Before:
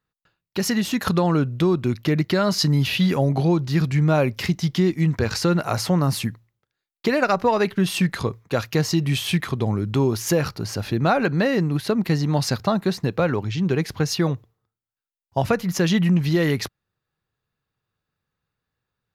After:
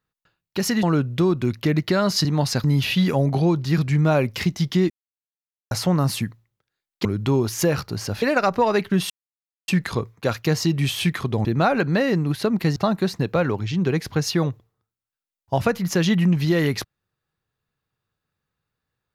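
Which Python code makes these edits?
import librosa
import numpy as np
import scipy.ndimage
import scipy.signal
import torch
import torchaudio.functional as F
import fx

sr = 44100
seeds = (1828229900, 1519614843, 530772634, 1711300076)

y = fx.edit(x, sr, fx.cut(start_s=0.83, length_s=0.42),
    fx.silence(start_s=4.93, length_s=0.81),
    fx.insert_silence(at_s=7.96, length_s=0.58),
    fx.move(start_s=9.73, length_s=1.17, to_s=7.08),
    fx.move(start_s=12.21, length_s=0.39, to_s=2.67), tone=tone)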